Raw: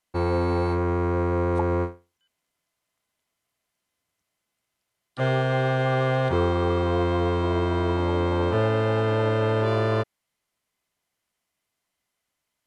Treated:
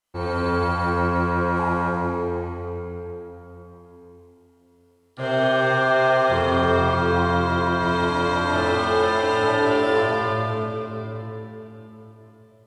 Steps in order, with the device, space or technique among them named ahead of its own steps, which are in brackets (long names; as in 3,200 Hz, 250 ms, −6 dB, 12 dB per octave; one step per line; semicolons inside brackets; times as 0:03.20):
0:07.80–0:09.44: spectral tilt +2.5 dB per octave
tunnel (flutter between parallel walls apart 7.1 metres, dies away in 0.7 s; convolution reverb RT60 3.9 s, pre-delay 16 ms, DRR −7.5 dB)
level −4.5 dB